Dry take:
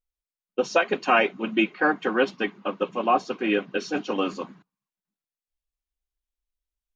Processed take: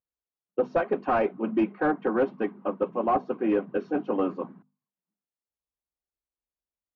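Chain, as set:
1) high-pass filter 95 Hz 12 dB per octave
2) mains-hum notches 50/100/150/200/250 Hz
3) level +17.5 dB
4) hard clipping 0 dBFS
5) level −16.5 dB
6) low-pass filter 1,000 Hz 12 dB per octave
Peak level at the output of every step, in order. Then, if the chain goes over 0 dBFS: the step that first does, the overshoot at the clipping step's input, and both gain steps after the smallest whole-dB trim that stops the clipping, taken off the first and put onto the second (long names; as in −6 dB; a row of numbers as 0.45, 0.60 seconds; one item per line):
−7.5, −7.5, +10.0, 0.0, −16.5, −16.0 dBFS
step 3, 10.0 dB
step 3 +7.5 dB, step 5 −6.5 dB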